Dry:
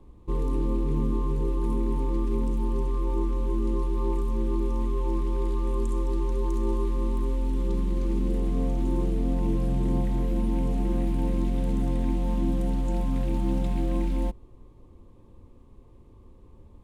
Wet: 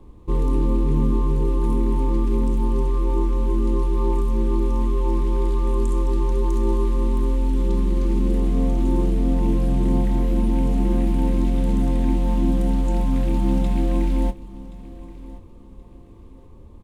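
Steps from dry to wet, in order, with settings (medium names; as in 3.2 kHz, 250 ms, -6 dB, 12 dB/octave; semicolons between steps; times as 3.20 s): doubling 26 ms -12.5 dB; feedback delay 1076 ms, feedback 30%, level -18.5 dB; trim +5.5 dB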